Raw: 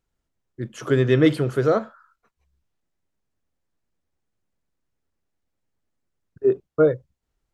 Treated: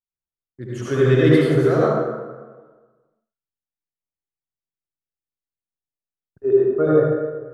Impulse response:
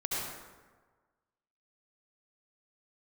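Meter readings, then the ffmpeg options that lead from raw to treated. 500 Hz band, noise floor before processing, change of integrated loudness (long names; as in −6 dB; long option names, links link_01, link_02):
+4.0 dB, −80 dBFS, +3.0 dB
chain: -filter_complex "[0:a]agate=range=-25dB:threshold=-51dB:ratio=16:detection=peak[link_01];[1:a]atrim=start_sample=2205[link_02];[link_01][link_02]afir=irnorm=-1:irlink=0,volume=-2.5dB"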